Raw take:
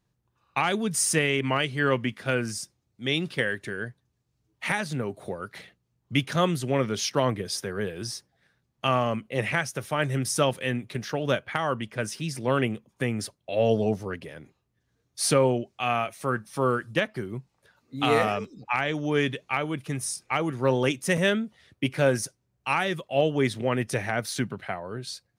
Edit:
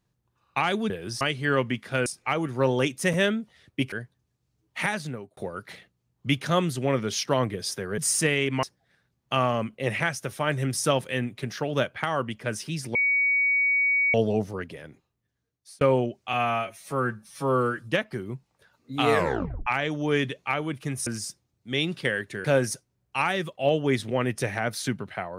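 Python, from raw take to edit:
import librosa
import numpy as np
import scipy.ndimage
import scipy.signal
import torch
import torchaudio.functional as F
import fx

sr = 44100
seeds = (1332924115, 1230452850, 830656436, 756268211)

y = fx.edit(x, sr, fx.swap(start_s=0.9, length_s=0.65, other_s=7.84, other_length_s=0.31),
    fx.swap(start_s=2.4, length_s=1.38, other_s=20.1, other_length_s=1.86),
    fx.fade_out_span(start_s=4.81, length_s=0.42),
    fx.bleep(start_s=12.47, length_s=1.19, hz=2250.0, db=-19.5),
    fx.fade_out_span(start_s=14.32, length_s=1.01),
    fx.stretch_span(start_s=15.85, length_s=0.97, factor=1.5),
    fx.tape_stop(start_s=18.16, length_s=0.54), tone=tone)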